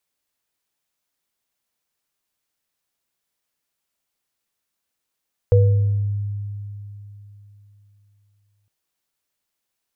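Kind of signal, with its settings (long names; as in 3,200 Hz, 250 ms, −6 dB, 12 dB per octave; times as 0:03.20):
inharmonic partials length 3.16 s, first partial 102 Hz, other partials 485 Hz, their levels −3.5 dB, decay 3.44 s, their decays 0.71 s, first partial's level −10 dB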